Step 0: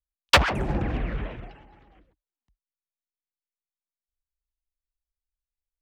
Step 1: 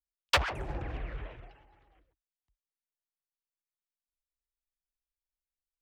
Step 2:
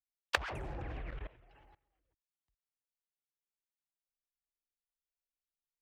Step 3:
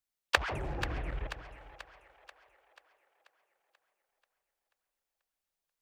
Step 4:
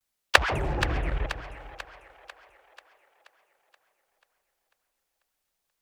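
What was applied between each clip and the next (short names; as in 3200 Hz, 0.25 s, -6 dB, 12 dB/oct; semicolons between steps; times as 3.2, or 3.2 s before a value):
bell 210 Hz -13 dB 0.75 oct; gain -8.5 dB
level quantiser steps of 21 dB; gain +1 dB
split-band echo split 510 Hz, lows 0.146 s, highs 0.486 s, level -11 dB; gain +5 dB
vibrato 0.38 Hz 35 cents; gain +8.5 dB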